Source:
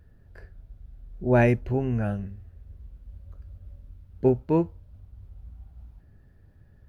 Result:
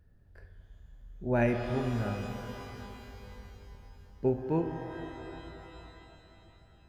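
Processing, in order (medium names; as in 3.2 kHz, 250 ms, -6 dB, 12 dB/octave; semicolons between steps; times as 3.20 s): pitch-shifted reverb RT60 3.5 s, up +12 st, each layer -8 dB, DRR 5 dB; trim -7.5 dB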